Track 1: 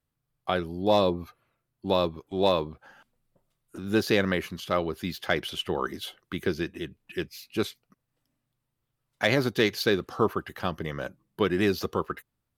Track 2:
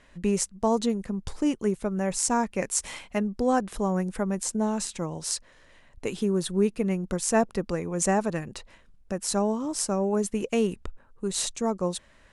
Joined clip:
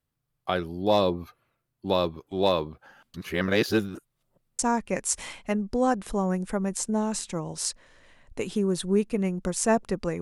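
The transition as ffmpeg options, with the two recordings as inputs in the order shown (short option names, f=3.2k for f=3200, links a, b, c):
-filter_complex "[0:a]apad=whole_dur=10.21,atrim=end=10.21,asplit=2[a][b];[a]atrim=end=3.142[c];[b]atrim=start=3.138:end=4.592,asetpts=PTS-STARTPTS,areverse[d];[1:a]atrim=start=2.248:end=7.87[e];[c][d]acrossfade=d=0.004:c1=hsin:c2=hsin[f];[f][e]acrossfade=d=0.004:c1=hsin:c2=hsin"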